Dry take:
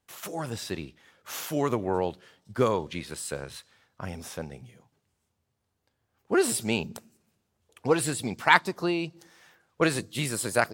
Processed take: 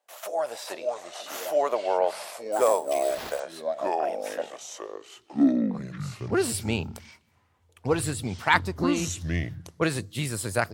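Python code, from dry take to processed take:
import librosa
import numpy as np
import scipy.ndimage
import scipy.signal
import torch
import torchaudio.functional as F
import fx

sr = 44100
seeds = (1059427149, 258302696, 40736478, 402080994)

y = fx.echo_pitch(x, sr, ms=369, semitones=-5, count=2, db_per_echo=-3.0)
y = fx.filter_sweep_highpass(y, sr, from_hz=620.0, to_hz=87.0, start_s=4.74, end_s=6.41, q=5.4)
y = fx.sample_hold(y, sr, seeds[0], rate_hz=8500.0, jitter_pct=0, at=(2.52, 3.4))
y = y * 10.0 ** (-2.0 / 20.0)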